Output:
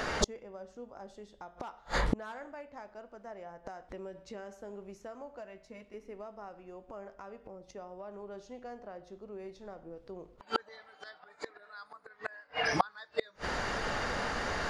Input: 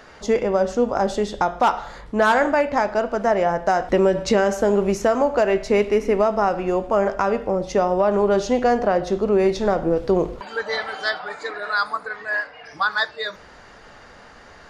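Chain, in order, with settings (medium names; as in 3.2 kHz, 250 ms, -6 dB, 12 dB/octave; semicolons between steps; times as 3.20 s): inverted gate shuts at -23 dBFS, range -38 dB; 5.37–5.94 s: comb of notches 410 Hz; trim +11 dB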